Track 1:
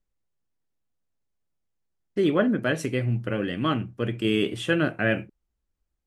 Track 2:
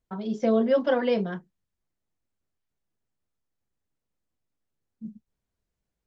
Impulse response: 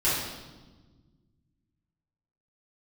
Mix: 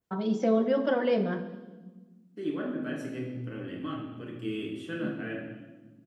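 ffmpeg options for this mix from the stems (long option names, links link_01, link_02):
-filter_complex "[0:a]equalizer=frequency=280:width_type=o:width=0.32:gain=6,flanger=delay=7.2:depth=9:regen=52:speed=0.5:shape=triangular,adelay=200,volume=-15dB,asplit=2[link_01][link_02];[link_02]volume=-9dB[link_03];[1:a]alimiter=limit=-19dB:level=0:latency=1:release=312,volume=1.5dB,asplit=2[link_04][link_05];[link_05]volume=-19dB[link_06];[2:a]atrim=start_sample=2205[link_07];[link_03][link_06]amix=inputs=2:normalize=0[link_08];[link_08][link_07]afir=irnorm=-1:irlink=0[link_09];[link_01][link_04][link_09]amix=inputs=3:normalize=0,highpass=110,adynamicequalizer=threshold=0.00251:dfrequency=4900:dqfactor=0.78:tfrequency=4900:tqfactor=0.78:attack=5:release=100:ratio=0.375:range=2:mode=cutabove:tftype=bell"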